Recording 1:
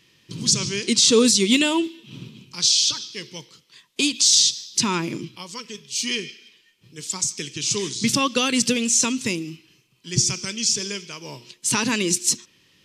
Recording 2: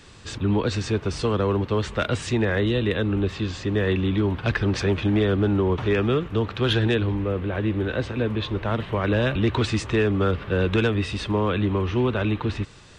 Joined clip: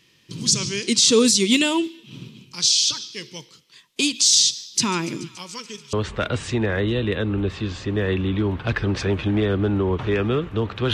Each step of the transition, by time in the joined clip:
recording 1
4.73–5.93 thin delay 0.143 s, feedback 78%, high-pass 1600 Hz, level -17.5 dB
5.93 switch to recording 2 from 1.72 s

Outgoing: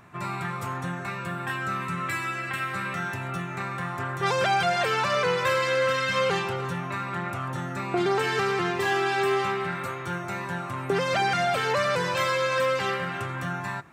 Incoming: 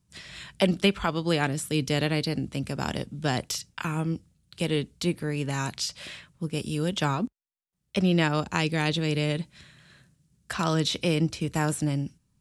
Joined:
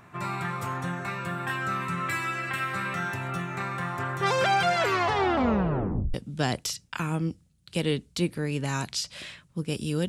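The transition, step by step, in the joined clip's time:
outgoing
4.74 tape stop 1.40 s
6.14 switch to incoming from 2.99 s

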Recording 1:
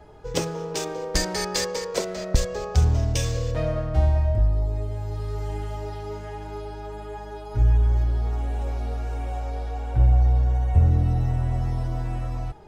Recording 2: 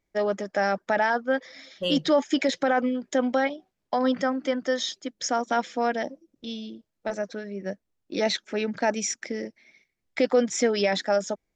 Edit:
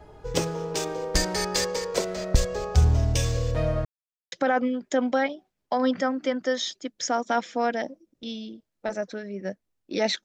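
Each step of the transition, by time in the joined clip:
recording 1
3.85–4.32 mute
4.32 switch to recording 2 from 2.53 s

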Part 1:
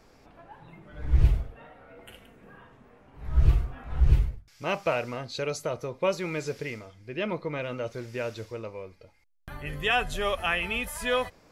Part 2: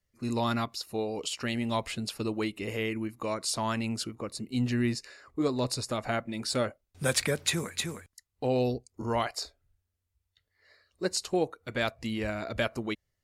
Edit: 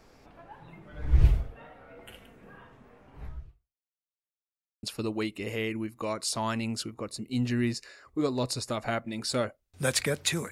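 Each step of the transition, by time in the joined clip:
part 1
3.24–3.97 fade out exponential
3.97–4.83 mute
4.83 switch to part 2 from 2.04 s

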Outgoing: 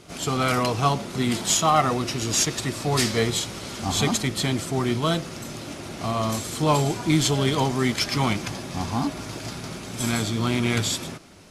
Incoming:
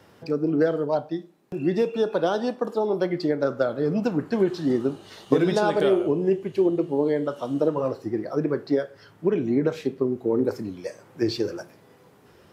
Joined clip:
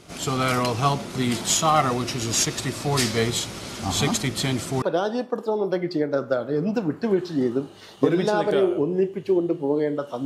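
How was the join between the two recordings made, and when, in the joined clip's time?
outgoing
4.82 switch to incoming from 2.11 s

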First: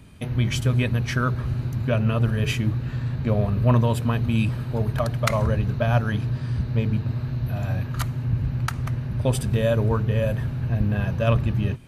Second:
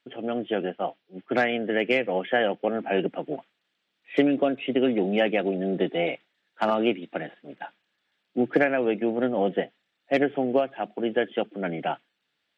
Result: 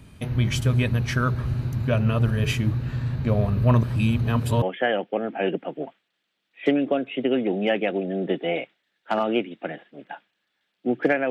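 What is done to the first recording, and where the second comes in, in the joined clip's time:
first
3.83–4.62 reverse
4.62 switch to second from 2.13 s

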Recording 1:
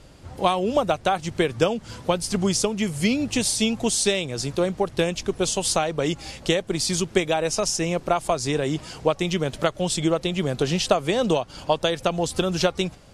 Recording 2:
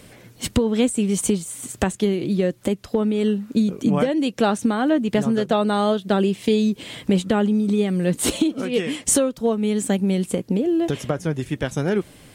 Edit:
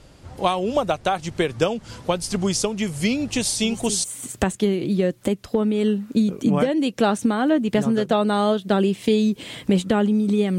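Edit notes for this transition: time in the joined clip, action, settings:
recording 1
3.63 add recording 2 from 1.03 s 0.41 s -12 dB
4.04 switch to recording 2 from 1.44 s

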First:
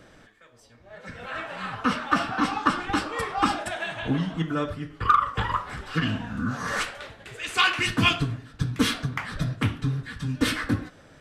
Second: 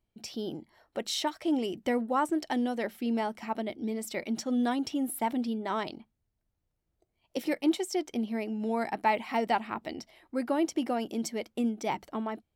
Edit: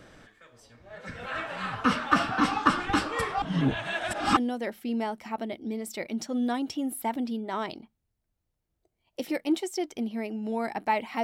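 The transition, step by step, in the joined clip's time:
first
3.42–4.37 reverse
4.37 switch to second from 2.54 s

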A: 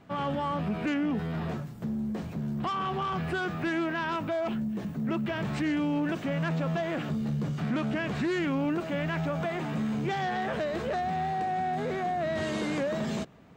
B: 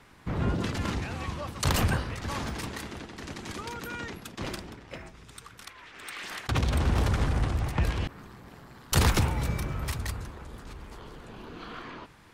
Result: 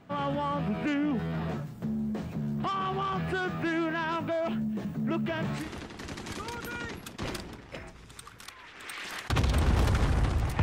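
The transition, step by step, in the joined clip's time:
A
5.61 switch to B from 2.8 s, crossfade 0.18 s

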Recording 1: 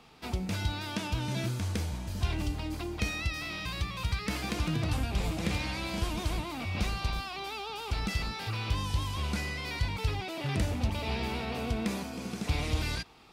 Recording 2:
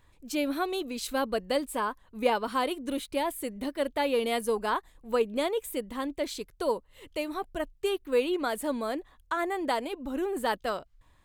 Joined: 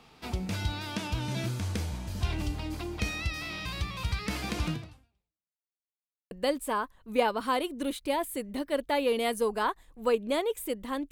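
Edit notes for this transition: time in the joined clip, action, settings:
recording 1
4.71–5.64 fade out exponential
5.64–6.31 mute
6.31 switch to recording 2 from 1.38 s

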